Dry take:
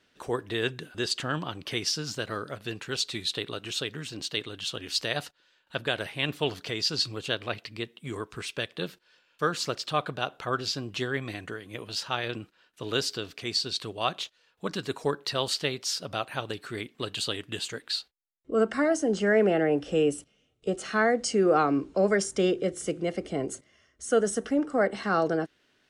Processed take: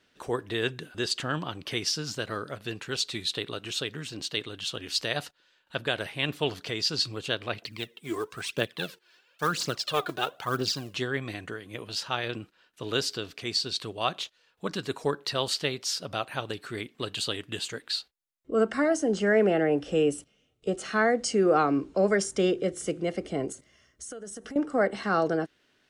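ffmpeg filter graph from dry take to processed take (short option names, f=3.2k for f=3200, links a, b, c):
-filter_complex "[0:a]asettb=1/sr,asplit=3[a][b][c];[a]atrim=end=7.624[d];[b]atrim=start=7.62:end=10.94,asetpts=PTS-STARTPTS,afade=t=in:d=0.004:c=qsin,afade=t=out:st=3.316:d=0.004:c=qsin,highpass=130,acrusher=bits=5:mode=log:mix=0:aa=0.000001,aphaser=in_gain=1:out_gain=1:delay=3.1:decay=0.63:speed=1:type=triangular[e];[c]atrim=start=10.936[f];[d][e]acrossfade=d=0.004:c1=hsin:c2=qsin[g];[g][f]acrossfade=d=0.004:c1=qsin:c2=hsin,asettb=1/sr,asplit=3[h][i][j];[h]atrim=end=23.524[k];[i]atrim=start=23.52:end=24.56,asetpts=PTS-STARTPTS,afade=t=in:d=0.004:c=qsin,afade=t=out:st=1.036:d=0.004:c=qsin,bass=f=250:g=1,treble=f=4k:g=4,acompressor=threshold=-37dB:ratio=10:attack=3.2:release=140:knee=1:detection=peak,aeval=exprs='val(0)+0.000178*(sin(2*PI*60*n/s)+sin(2*PI*2*60*n/s)/2+sin(2*PI*3*60*n/s)/3+sin(2*PI*4*60*n/s)/4+sin(2*PI*5*60*n/s)/5)':c=same[l];[j]atrim=start=24.556[m];[k][l]acrossfade=d=0.004:c1=hsin:c2=qsin[n];[n][m]acrossfade=d=0.004:c1=qsin:c2=hsin"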